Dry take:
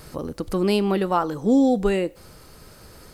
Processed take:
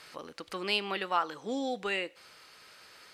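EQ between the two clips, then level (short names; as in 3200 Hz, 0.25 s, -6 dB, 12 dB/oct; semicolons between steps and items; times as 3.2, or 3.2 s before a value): band-pass 2600 Hz, Q 1.1; +2.0 dB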